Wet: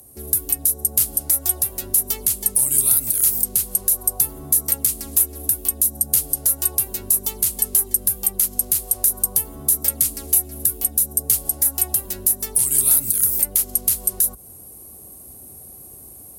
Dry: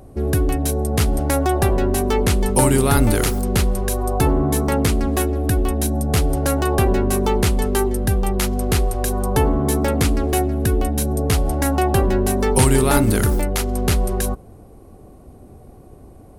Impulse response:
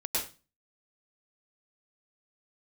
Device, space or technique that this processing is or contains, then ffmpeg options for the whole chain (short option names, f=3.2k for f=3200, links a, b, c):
FM broadcast chain: -filter_complex "[0:a]highpass=f=50:w=0.5412,highpass=f=50:w=1.3066,dynaudnorm=f=180:g=3:m=6dB,acrossover=split=140|2700[a][b][c];[a]acompressor=threshold=-24dB:ratio=4[d];[b]acompressor=threshold=-25dB:ratio=4[e];[c]acompressor=threshold=-28dB:ratio=4[f];[d][e][f]amix=inputs=3:normalize=0,aemphasis=mode=production:type=75fm,alimiter=limit=-5.5dB:level=0:latency=1:release=240,asoftclip=type=hard:threshold=-9.5dB,lowpass=f=15k:w=0.5412,lowpass=f=15k:w=1.3066,aemphasis=mode=production:type=75fm,volume=-11dB"